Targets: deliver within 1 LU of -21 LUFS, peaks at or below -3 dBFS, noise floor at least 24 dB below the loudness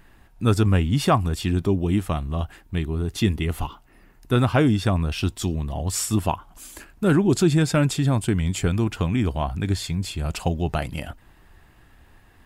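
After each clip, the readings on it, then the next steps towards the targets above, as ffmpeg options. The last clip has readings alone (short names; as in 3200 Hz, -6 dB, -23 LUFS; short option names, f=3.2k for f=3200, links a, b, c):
loudness -23.0 LUFS; peak -8.5 dBFS; loudness target -21.0 LUFS
-> -af "volume=2dB"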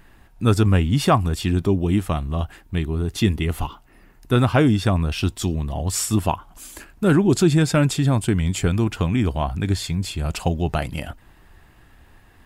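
loudness -21.0 LUFS; peak -6.5 dBFS; noise floor -52 dBFS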